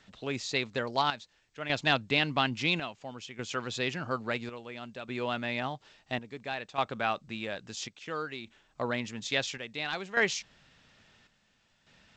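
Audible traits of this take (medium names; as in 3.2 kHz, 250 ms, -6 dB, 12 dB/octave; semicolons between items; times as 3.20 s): chopped level 0.59 Hz, depth 65%, duty 65%; G.722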